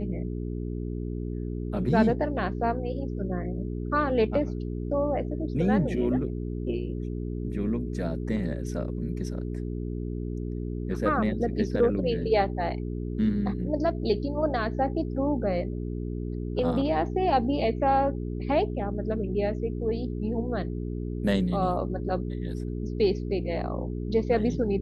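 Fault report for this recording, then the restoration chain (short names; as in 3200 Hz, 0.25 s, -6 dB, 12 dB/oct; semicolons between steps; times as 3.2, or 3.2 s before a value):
hum 60 Hz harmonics 7 -32 dBFS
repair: de-hum 60 Hz, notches 7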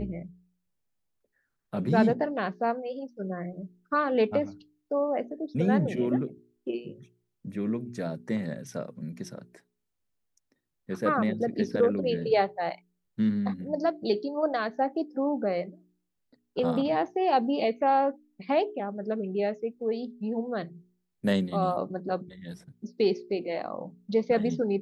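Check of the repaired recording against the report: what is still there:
none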